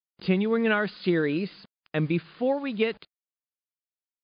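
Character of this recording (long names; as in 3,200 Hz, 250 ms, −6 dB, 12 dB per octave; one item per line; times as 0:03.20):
a quantiser's noise floor 8 bits, dither none
MP3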